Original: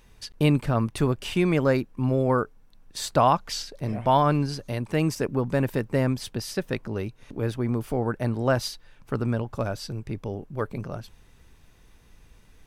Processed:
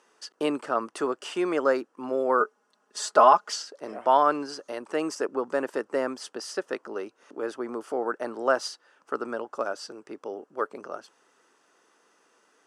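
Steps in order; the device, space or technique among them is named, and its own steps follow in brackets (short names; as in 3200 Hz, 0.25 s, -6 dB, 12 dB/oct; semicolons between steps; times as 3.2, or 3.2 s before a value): phone speaker on a table (speaker cabinet 330–8900 Hz, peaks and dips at 1300 Hz +7 dB, 2300 Hz -9 dB, 3800 Hz -9 dB); 2.4–3.56 comb 4.8 ms, depth 86%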